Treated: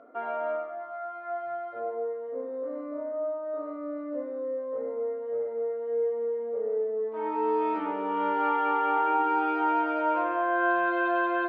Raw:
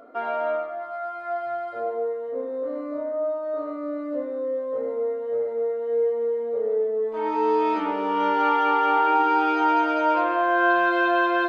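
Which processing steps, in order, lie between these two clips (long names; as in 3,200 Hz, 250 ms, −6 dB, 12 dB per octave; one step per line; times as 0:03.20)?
band-pass filter 110–2,300 Hz
level −5 dB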